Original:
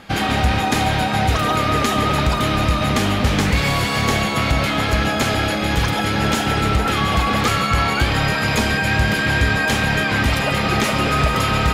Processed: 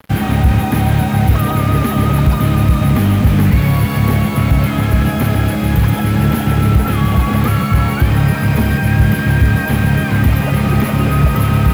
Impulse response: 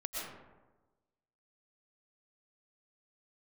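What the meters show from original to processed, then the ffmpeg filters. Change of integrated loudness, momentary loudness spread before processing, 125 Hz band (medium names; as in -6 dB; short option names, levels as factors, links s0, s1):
+4.5 dB, 1 LU, +9.5 dB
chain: -filter_complex "[0:a]highpass=78,bass=f=250:g=14,treble=f=4000:g=-10,acrossover=split=340|530|2600[s0][s1][s2][s3];[s3]alimiter=level_in=1.41:limit=0.0631:level=0:latency=1,volume=0.708[s4];[s0][s1][s2][s4]amix=inputs=4:normalize=0,aexciter=amount=13.7:drive=7.6:freq=11000,acrusher=bits=4:mix=0:aa=0.5,asoftclip=type=tanh:threshold=1,volume=0.891"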